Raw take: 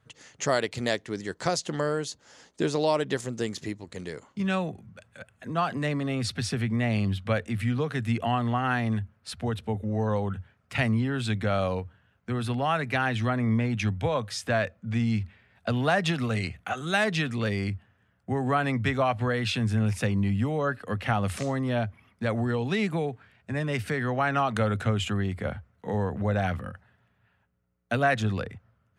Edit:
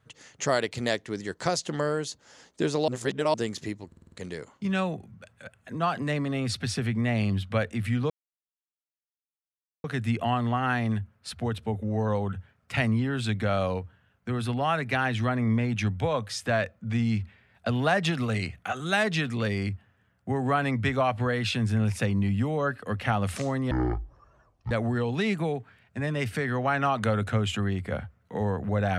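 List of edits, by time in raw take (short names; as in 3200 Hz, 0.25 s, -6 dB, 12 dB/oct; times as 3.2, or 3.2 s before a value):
2.88–3.34 reverse
3.87 stutter 0.05 s, 6 plays
7.85 insert silence 1.74 s
21.72–22.24 speed 52%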